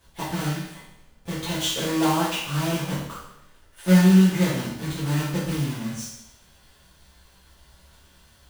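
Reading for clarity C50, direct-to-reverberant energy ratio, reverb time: 2.0 dB, -9.5 dB, 0.80 s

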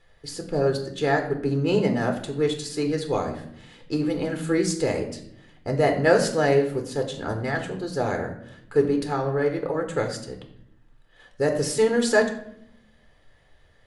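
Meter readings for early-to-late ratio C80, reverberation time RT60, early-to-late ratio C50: 12.0 dB, 0.70 s, 9.0 dB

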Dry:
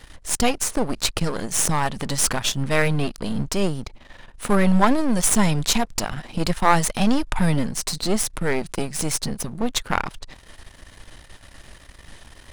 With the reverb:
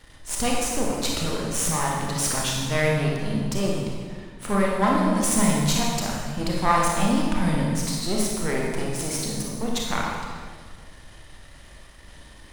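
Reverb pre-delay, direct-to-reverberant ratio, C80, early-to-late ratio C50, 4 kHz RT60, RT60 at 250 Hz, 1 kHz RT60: 26 ms, -3.0 dB, 1.5 dB, -0.5 dB, 1.3 s, 1.9 s, 1.6 s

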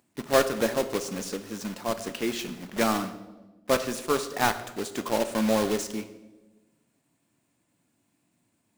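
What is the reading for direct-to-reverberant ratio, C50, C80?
9.0 dB, 12.0 dB, 14.0 dB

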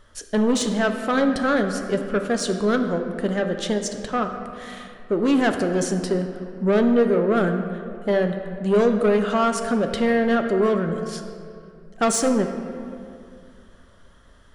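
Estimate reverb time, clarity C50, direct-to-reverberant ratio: 2.3 s, 7.0 dB, 5.0 dB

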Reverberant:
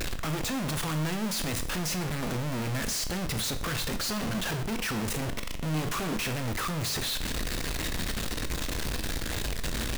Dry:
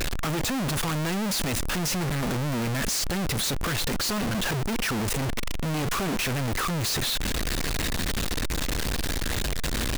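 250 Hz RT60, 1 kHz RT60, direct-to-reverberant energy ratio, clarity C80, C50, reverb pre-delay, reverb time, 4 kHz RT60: 0.60 s, 0.55 s, 8.0 dB, 15.5 dB, 12.0 dB, 19 ms, 0.55 s, 0.55 s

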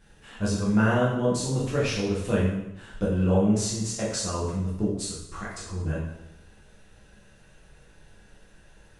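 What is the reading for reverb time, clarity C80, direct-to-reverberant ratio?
0.85 s, 5.0 dB, -7.0 dB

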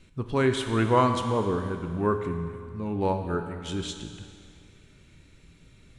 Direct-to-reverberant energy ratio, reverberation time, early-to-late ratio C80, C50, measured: 5.5 dB, 2.2 s, 8.0 dB, 7.0 dB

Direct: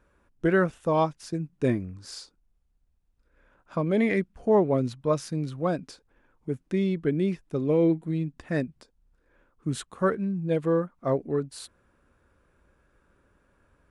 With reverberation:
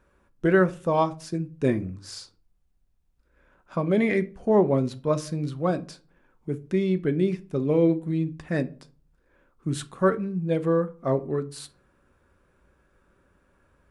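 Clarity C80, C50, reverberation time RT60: 25.5 dB, 18.5 dB, 0.40 s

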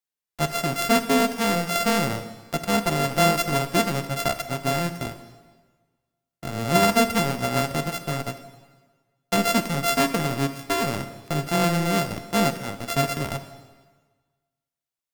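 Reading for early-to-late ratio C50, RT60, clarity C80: 11.0 dB, 1.4 s, 12.5 dB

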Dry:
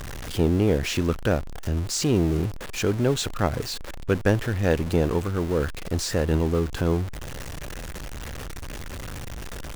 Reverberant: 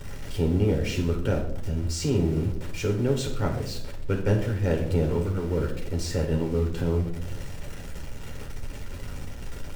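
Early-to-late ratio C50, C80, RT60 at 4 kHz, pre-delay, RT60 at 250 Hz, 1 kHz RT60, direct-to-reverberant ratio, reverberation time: 7.5 dB, 11.0 dB, 0.45 s, 3 ms, 1.1 s, 0.60 s, 0.0 dB, 0.80 s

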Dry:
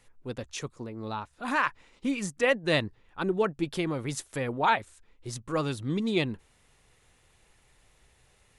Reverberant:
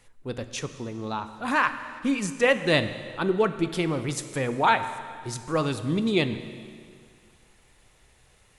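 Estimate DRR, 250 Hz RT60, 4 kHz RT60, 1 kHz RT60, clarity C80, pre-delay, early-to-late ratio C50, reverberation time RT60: 10.0 dB, 2.1 s, 2.0 s, 2.1 s, 12.0 dB, 6 ms, 11.0 dB, 2.1 s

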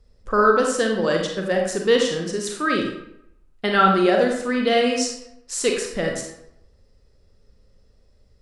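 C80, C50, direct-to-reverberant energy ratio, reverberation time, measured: 7.0 dB, 3.5 dB, 1.0 dB, 0.80 s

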